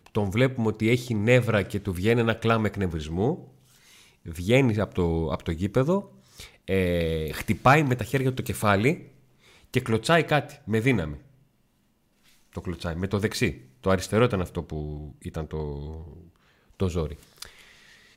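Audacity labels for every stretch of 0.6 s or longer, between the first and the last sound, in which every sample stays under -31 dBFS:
3.350000	4.280000	silence
8.950000	9.740000	silence
11.150000	12.570000	silence
15.960000	16.800000	silence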